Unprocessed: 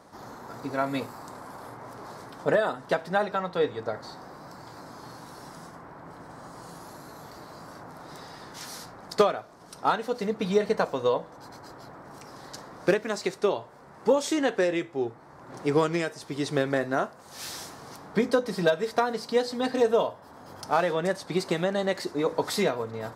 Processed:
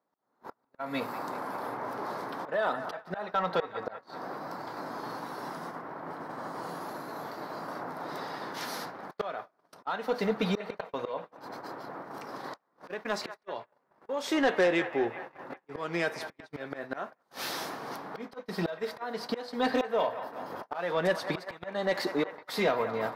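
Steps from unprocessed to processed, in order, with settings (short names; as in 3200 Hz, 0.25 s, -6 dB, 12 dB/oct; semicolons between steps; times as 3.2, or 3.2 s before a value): AGC gain up to 4 dB; in parallel at -8 dB: hard clip -14.5 dBFS, distortion -14 dB; on the sum: dynamic EQ 360 Hz, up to -6 dB, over -30 dBFS, Q 1; HPF 220 Hz 12 dB/oct; auto swell 0.351 s; bell 7800 Hz -13.5 dB 1.2 oct; band-limited delay 0.192 s, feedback 65%, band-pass 1200 Hz, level -11 dB; soft clip -17.5 dBFS, distortion -16 dB; gate -39 dBFS, range -31 dB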